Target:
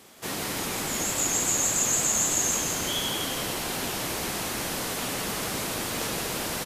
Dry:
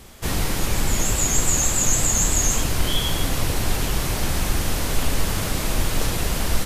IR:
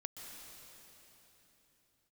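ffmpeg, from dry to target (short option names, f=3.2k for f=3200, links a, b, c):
-filter_complex "[0:a]highpass=220,asplit=2[a][b];[b]asplit=7[c][d][e][f][g][h][i];[c]adelay=166,afreqshift=-62,volume=-5dB[j];[d]adelay=332,afreqshift=-124,volume=-10.2dB[k];[e]adelay=498,afreqshift=-186,volume=-15.4dB[l];[f]adelay=664,afreqshift=-248,volume=-20.6dB[m];[g]adelay=830,afreqshift=-310,volume=-25.8dB[n];[h]adelay=996,afreqshift=-372,volume=-31dB[o];[i]adelay=1162,afreqshift=-434,volume=-36.2dB[p];[j][k][l][m][n][o][p]amix=inputs=7:normalize=0[q];[a][q]amix=inputs=2:normalize=0,volume=-4.5dB"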